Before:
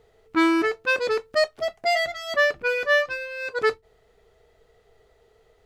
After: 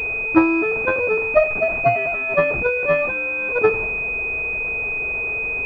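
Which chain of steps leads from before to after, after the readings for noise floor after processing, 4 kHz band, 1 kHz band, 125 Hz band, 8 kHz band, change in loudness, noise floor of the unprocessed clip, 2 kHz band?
-24 dBFS, under -15 dB, +3.5 dB, no reading, under -15 dB, +4.0 dB, -62 dBFS, +5.5 dB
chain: jump at every zero crossing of -27.5 dBFS; transient shaper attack +11 dB, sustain +7 dB; class-D stage that switches slowly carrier 2.5 kHz; trim -1 dB

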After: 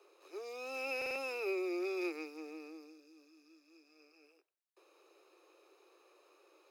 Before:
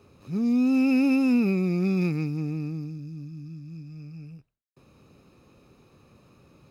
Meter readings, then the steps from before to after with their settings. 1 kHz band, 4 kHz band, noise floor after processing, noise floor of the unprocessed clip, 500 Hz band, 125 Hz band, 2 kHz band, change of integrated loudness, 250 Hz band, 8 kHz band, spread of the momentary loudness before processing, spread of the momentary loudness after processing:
-5.0 dB, -5.0 dB, -77 dBFS, -63 dBFS, -5.0 dB, under -40 dB, -5.0 dB, -15.0 dB, -22.5 dB, no reading, 20 LU, 15 LU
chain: steep high-pass 330 Hz 96 dB/octave; buffer glitch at 0.97 s, samples 2048, times 3; trim -5 dB

